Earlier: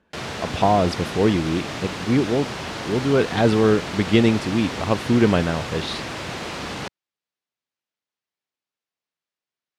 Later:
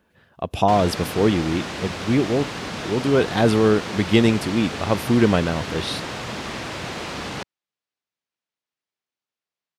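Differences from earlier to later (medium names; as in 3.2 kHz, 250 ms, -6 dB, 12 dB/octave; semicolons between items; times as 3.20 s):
speech: remove distance through air 65 m; background: entry +0.55 s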